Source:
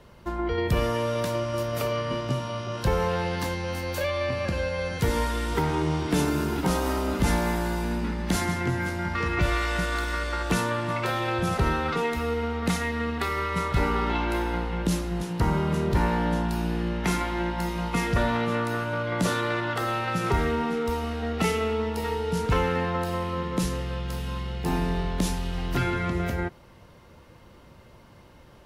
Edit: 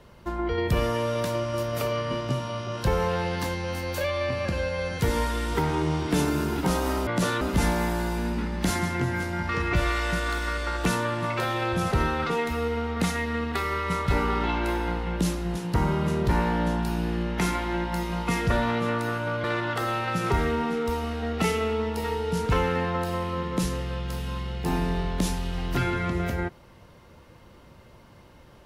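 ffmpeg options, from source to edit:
-filter_complex "[0:a]asplit=4[s0][s1][s2][s3];[s0]atrim=end=7.072[s4];[s1]atrim=start=19.098:end=19.442[s5];[s2]atrim=start=7.068:end=19.102[s6];[s3]atrim=start=19.438[s7];[s4][s5]acrossfade=d=0.004:c1=hsin:c2=hsin[s8];[s8][s6]acrossfade=d=0.004:c1=hsin:c2=hsin[s9];[s9][s7]acrossfade=d=0.004:c1=hsin:c2=hsin"

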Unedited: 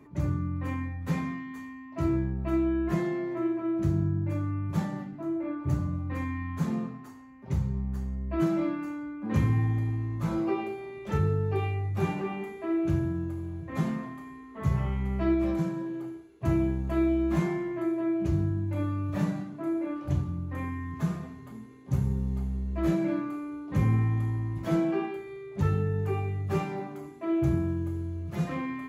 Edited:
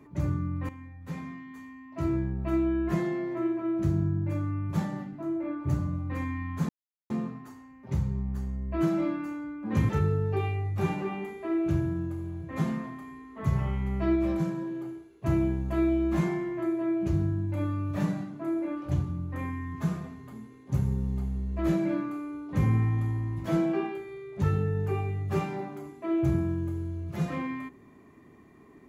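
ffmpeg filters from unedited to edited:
-filter_complex "[0:a]asplit=4[s0][s1][s2][s3];[s0]atrim=end=0.69,asetpts=PTS-STARTPTS,afade=t=out:st=0.686:d=0.004:c=hsin:silence=0.199526[s4];[s1]atrim=start=0.69:end=6.69,asetpts=PTS-STARTPTS,afade=t=in:d=1.72:silence=0.199526,afade=t=out:st=5.996:d=0.004:c=hsin,apad=pad_dur=0.41[s5];[s2]atrim=start=6.69:end=9.482,asetpts=PTS-STARTPTS,afade=t=in:d=0.004:c=hsin[s6];[s3]atrim=start=11.078[s7];[s4][s5][s6]concat=n=3:v=0:a=1[s8];[s8][s7]acrossfade=d=0.004:c1=hsin:c2=hsin"

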